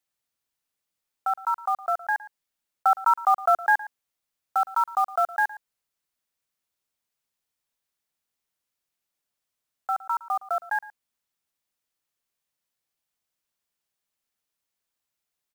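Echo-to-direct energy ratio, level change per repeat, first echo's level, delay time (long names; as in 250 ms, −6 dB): −18.0 dB, repeats not evenly spaced, −18.0 dB, 113 ms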